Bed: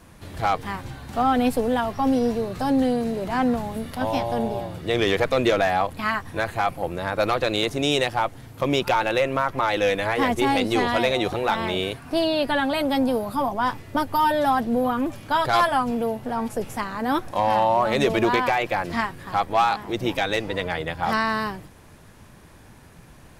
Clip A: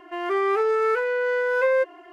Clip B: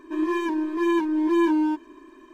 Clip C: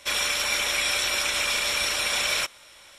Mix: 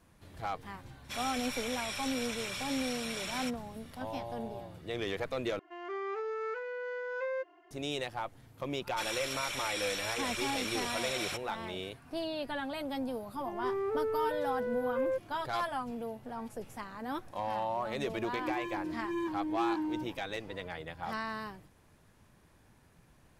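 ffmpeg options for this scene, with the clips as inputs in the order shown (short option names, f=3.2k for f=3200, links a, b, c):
-filter_complex "[3:a]asplit=2[a][b];[1:a]asplit=2[c][d];[0:a]volume=-14.5dB[e];[c]aresample=16000,aresample=44100[f];[d]tiltshelf=f=970:g=9[g];[e]asplit=2[h][i];[h]atrim=end=5.594[j];[f]atrim=end=2.12,asetpts=PTS-STARTPTS,volume=-15dB[k];[i]atrim=start=7.706[l];[a]atrim=end=2.98,asetpts=PTS-STARTPTS,volume=-14.5dB,afade=t=in:d=0.004:c=hsin,afade=t=out:st=2.976:d=0.004:c=hsin,adelay=1040[m];[b]atrim=end=2.98,asetpts=PTS-STARTPTS,volume=-12.5dB,afade=t=in:d=0.004:c=hsin,afade=t=out:st=2.976:d=0.004:c=hsin,adelay=8910[n];[g]atrim=end=2.12,asetpts=PTS-STARTPTS,volume=-16dB,afade=t=in:d=0.004:c=hsin,afade=t=out:st=2.116:d=0.004:c=hsin,adelay=13340[o];[2:a]atrim=end=2.33,asetpts=PTS-STARTPTS,volume=-13dB,afade=t=in:d=0.004:c=hsin,afade=t=out:st=2.326:d=0.004:c=hsin,adelay=806148S[p];[j][k]acrossfade=d=0.004:c1=hsin:c2=hsin[q];[q][l]acrossfade=d=0.004:c1=hsin:c2=hsin[r];[r][m][n][o][p]amix=inputs=5:normalize=0"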